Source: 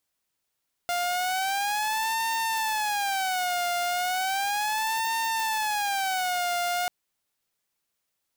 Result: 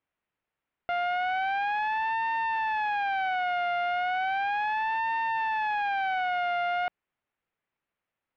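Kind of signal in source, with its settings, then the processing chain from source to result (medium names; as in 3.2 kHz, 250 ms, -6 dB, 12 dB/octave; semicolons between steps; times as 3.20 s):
siren wail 702–906 Hz 0.35 per s saw -22.5 dBFS 5.99 s
low-pass 2.6 kHz 24 dB/octave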